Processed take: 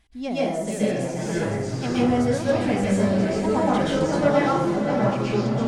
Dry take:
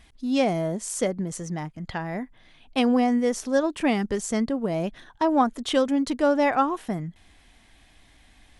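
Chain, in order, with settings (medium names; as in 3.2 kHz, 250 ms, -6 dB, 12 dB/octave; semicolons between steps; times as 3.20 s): de-esser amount 55%; time stretch by phase-locked vocoder 0.66×; ever faster or slower copies 409 ms, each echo -4 st, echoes 3; echo that smears into a reverb 564 ms, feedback 41%, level -7 dB; plate-style reverb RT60 0.63 s, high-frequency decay 0.75×, pre-delay 110 ms, DRR -8 dB; trim -8 dB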